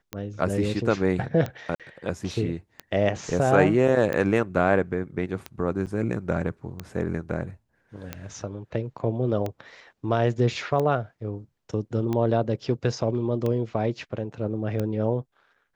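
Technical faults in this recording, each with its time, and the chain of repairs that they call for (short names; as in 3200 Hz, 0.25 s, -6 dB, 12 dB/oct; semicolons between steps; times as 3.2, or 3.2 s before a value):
tick 45 rpm -16 dBFS
1.75–1.8 gap 47 ms
5.86–5.87 gap 7.9 ms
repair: de-click; interpolate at 1.75, 47 ms; interpolate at 5.86, 7.9 ms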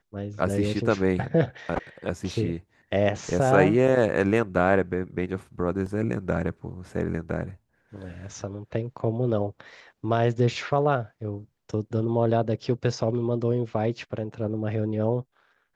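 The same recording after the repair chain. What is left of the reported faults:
none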